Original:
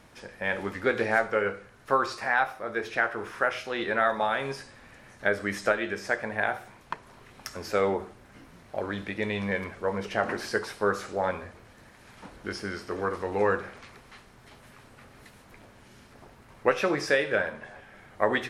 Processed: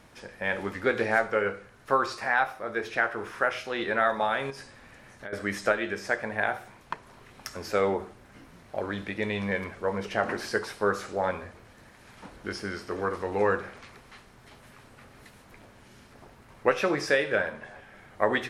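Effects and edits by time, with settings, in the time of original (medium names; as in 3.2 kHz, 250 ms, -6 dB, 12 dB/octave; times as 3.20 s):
4.50–5.33 s: compression 4:1, threshold -38 dBFS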